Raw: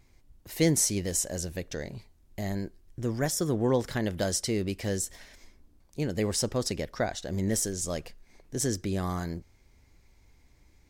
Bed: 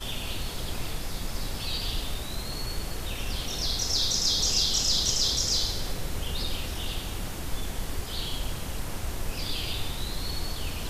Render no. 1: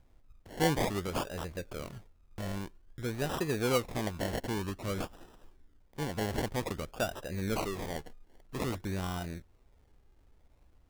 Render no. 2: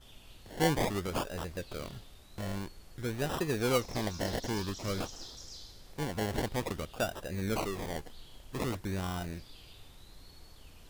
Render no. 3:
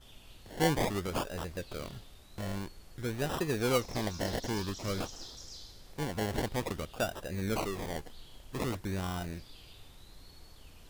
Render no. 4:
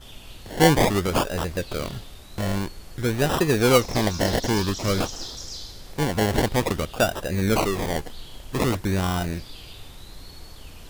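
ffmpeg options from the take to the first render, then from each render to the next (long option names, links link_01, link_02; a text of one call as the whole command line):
ffmpeg -i in.wav -af "flanger=delay=1:depth=1.6:regen=64:speed=0.45:shape=triangular,acrusher=samples=28:mix=1:aa=0.000001:lfo=1:lforange=16.8:lforate=0.52" out.wav
ffmpeg -i in.wav -i bed.wav -filter_complex "[1:a]volume=-22dB[link_01];[0:a][link_01]amix=inputs=2:normalize=0" out.wav
ffmpeg -i in.wav -af anull out.wav
ffmpeg -i in.wav -af "volume=11.5dB" out.wav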